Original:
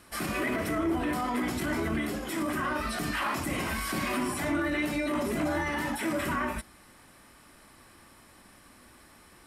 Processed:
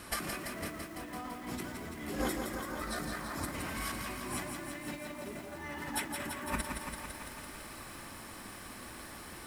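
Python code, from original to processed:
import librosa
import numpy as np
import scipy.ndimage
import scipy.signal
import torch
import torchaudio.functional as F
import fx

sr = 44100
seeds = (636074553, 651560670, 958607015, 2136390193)

y = fx.over_compress(x, sr, threshold_db=-37.0, ratio=-0.5)
y = fx.peak_eq(y, sr, hz=2800.0, db=-14.0, octaves=0.29, at=(2.21, 3.55))
y = fx.echo_crushed(y, sr, ms=168, feedback_pct=80, bits=9, wet_db=-5.0)
y = y * 10.0 ** (-1.5 / 20.0)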